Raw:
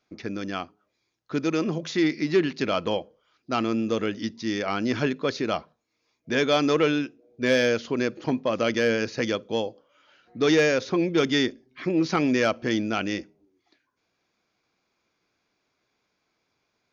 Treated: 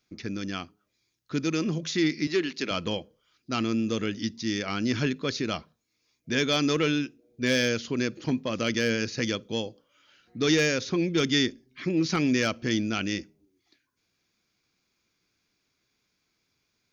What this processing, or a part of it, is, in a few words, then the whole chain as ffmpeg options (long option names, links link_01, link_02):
smiley-face EQ: -filter_complex "[0:a]lowshelf=frequency=170:gain=4,equalizer=frequency=720:width_type=o:width=1.8:gain=-9,highshelf=frequency=5800:gain=8,asettb=1/sr,asplit=3[link_01][link_02][link_03];[link_01]atrim=end=2.274[link_04];[link_02]atrim=start=2.27:end=2.71,asetpts=PTS-STARTPTS,afade=type=in:duration=0.004:curve=qsin,afade=type=out:start_time=0.436:duration=0.004:curve=qsin,highpass=300[link_05];[link_03]atrim=start=2.706[link_06];[link_04][link_05]acrossfade=duration=0.004:curve1=hsin:curve2=qsin[link_07];[link_07][link_06]acrossfade=duration=0.004:curve1=qsin:curve2=hsin"